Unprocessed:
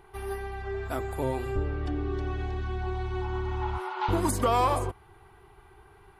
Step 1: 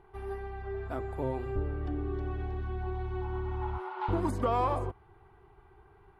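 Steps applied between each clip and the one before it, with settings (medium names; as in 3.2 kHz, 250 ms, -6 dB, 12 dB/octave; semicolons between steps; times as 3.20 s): low-pass 1.3 kHz 6 dB/octave; trim -3 dB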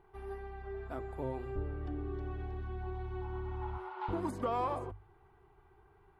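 hum notches 50/100 Hz; trim -5 dB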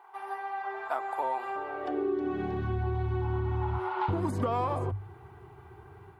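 level rider gain up to 4 dB; high-pass sweep 870 Hz -> 100 Hz, 1.63–2.79 s; compression 6:1, threshold -35 dBFS, peak gain reduction 10 dB; trim +8.5 dB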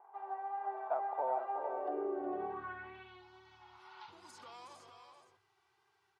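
multi-tap echo 368/455 ms -8.5/-7.5 dB; vibrato 2.1 Hz 23 cents; band-pass sweep 620 Hz -> 5.2 kHz, 2.30–3.31 s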